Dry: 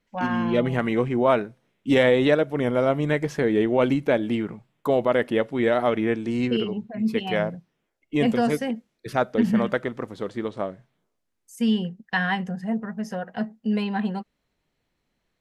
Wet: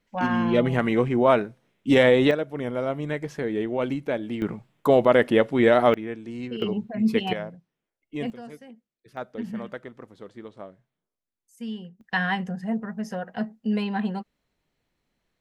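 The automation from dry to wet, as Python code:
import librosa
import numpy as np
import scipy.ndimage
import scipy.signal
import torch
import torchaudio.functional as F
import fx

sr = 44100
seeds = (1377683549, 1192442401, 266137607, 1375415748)

y = fx.gain(x, sr, db=fx.steps((0.0, 1.0), (2.31, -6.0), (4.42, 3.5), (5.94, -9.5), (6.62, 2.0), (7.33, -9.0), (8.3, -19.0), (9.17, -12.0), (12.01, -1.0)))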